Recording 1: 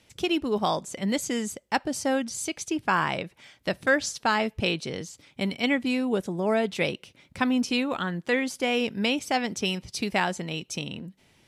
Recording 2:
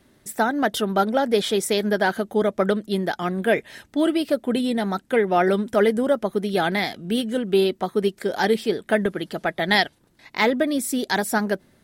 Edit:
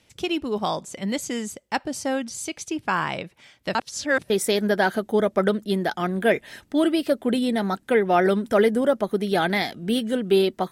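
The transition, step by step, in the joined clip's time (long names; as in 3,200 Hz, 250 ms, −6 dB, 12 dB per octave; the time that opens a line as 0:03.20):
recording 1
0:03.75–0:04.30: reverse
0:04.30: continue with recording 2 from 0:01.52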